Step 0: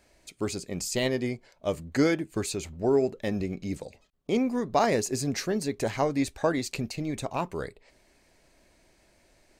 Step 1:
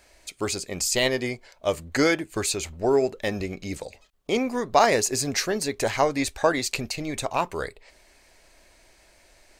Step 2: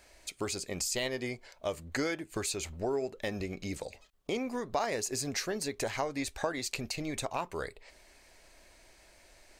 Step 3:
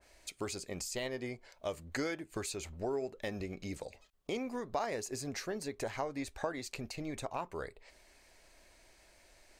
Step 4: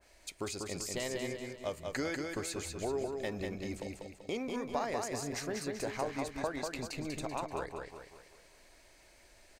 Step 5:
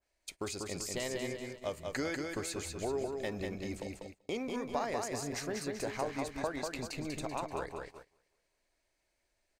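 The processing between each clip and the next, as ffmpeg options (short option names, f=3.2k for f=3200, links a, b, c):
-af "equalizer=f=180:w=0.52:g=-10.5,volume=8dB"
-af "acompressor=threshold=-31dB:ratio=2.5,volume=-2.5dB"
-af "adynamicequalizer=threshold=0.00316:dfrequency=2000:dqfactor=0.7:tfrequency=2000:tqfactor=0.7:attack=5:release=100:ratio=0.375:range=3:mode=cutabove:tftype=highshelf,volume=-3.5dB"
-af "aecho=1:1:193|386|579|772|965|1158:0.631|0.278|0.122|0.0537|0.0236|0.0104"
-af "agate=range=-19dB:threshold=-47dB:ratio=16:detection=peak"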